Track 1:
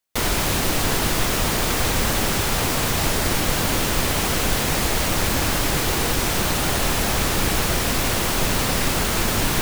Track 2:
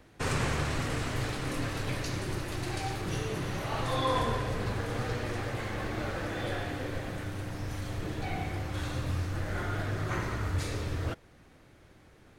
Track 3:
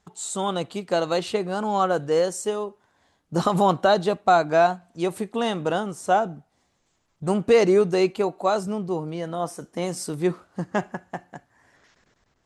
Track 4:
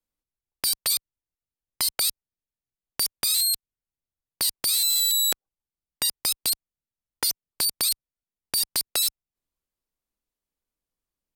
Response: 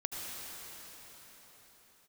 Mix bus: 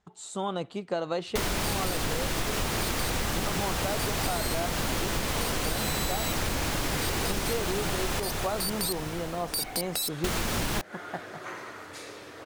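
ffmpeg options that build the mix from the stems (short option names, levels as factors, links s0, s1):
-filter_complex "[0:a]highshelf=f=11000:g=-5.5,adelay=1200,volume=0.891,asplit=3[s0][s1][s2];[s0]atrim=end=8.2,asetpts=PTS-STARTPTS,afade=t=out:st=8.196:d=0.004:c=hsin[s3];[s1]atrim=start=8.2:end=10.24,asetpts=PTS-STARTPTS,volume=0[s4];[s2]atrim=start=10.24,asetpts=PTS-STARTPTS,afade=t=in:d=0.004:c=hsin[s5];[s3][s4][s5]concat=n=3:v=0:a=1,asplit=2[s6][s7];[s7]volume=0.501[s8];[1:a]highpass=380,adelay=1350,volume=0.708[s9];[2:a]highshelf=f=6800:g=-12,volume=0.631[s10];[3:a]adelay=1000,volume=0.562[s11];[4:a]atrim=start_sample=2205[s12];[s8][s12]afir=irnorm=-1:irlink=0[s13];[s6][s9][s10][s11][s13]amix=inputs=5:normalize=0,acompressor=threshold=0.0562:ratio=12"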